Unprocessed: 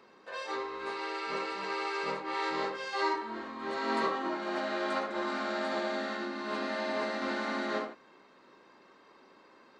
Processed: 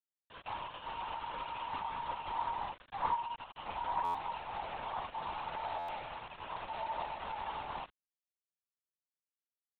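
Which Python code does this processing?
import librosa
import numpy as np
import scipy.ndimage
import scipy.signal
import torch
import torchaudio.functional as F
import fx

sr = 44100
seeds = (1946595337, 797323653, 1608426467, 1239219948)

y = fx.bandpass_q(x, sr, hz=900.0, q=11.0)
y = fx.quant_dither(y, sr, seeds[0], bits=8, dither='none')
y = fx.air_absorb(y, sr, metres=75.0)
y = fx.lpc_vocoder(y, sr, seeds[1], excitation='whisper', order=16)
y = fx.buffer_glitch(y, sr, at_s=(4.04, 5.78), block=512, repeats=8)
y = y * librosa.db_to_amplitude(6.0)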